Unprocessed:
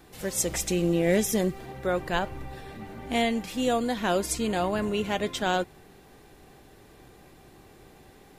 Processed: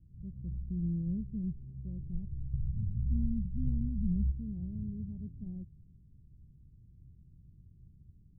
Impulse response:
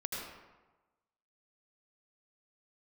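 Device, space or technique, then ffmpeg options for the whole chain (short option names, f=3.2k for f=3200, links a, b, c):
the neighbour's flat through the wall: -filter_complex "[0:a]lowpass=f=160:w=0.5412,lowpass=f=160:w=1.3066,equalizer=f=83:t=o:w=0.75:g=4,asplit=3[a][b][c];[a]afade=t=out:st=2.52:d=0.02[d];[b]asubboost=boost=6.5:cutoff=190,afade=t=in:st=2.52:d=0.02,afade=t=out:st=4.3:d=0.02[e];[c]afade=t=in:st=4.3:d=0.02[f];[d][e][f]amix=inputs=3:normalize=0"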